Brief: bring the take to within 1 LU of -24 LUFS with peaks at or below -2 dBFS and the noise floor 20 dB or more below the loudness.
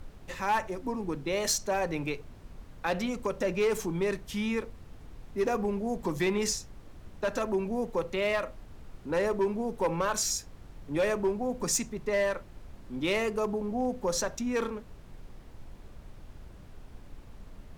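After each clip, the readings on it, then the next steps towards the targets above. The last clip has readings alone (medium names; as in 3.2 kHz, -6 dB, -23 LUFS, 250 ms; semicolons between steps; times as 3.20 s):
clipped samples 0.5%; clipping level -21.0 dBFS; noise floor -50 dBFS; noise floor target -51 dBFS; loudness -31.0 LUFS; peak level -21.0 dBFS; loudness target -24.0 LUFS
-> clip repair -21 dBFS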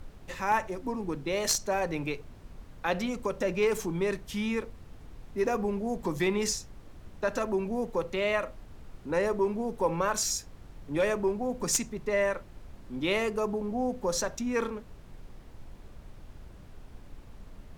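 clipped samples 0.0%; noise floor -50 dBFS; noise floor target -51 dBFS
-> noise print and reduce 6 dB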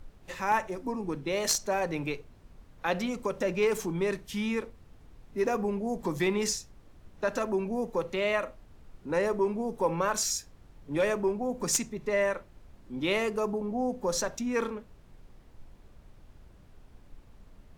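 noise floor -56 dBFS; loudness -30.5 LUFS; peak level -12.0 dBFS; loudness target -24.0 LUFS
-> trim +6.5 dB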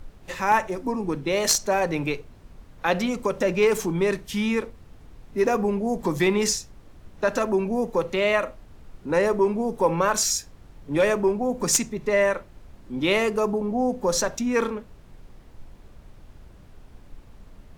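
loudness -24.0 LUFS; peak level -5.5 dBFS; noise floor -49 dBFS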